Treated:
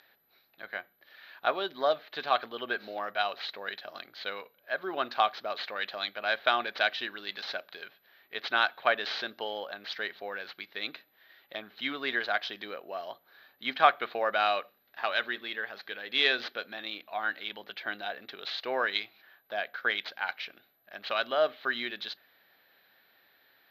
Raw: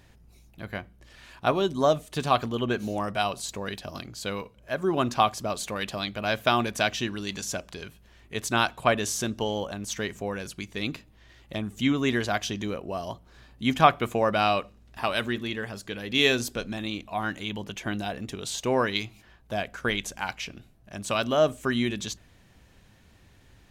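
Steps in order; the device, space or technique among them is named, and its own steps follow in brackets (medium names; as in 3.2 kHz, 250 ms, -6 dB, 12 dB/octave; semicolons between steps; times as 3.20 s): toy sound module (decimation joined by straight lines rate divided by 4×; class-D stage that switches slowly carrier 12 kHz; cabinet simulation 690–4500 Hz, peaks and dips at 1 kHz -7 dB, 1.6 kHz +4 dB, 2.7 kHz -4 dB, 4 kHz +7 dB)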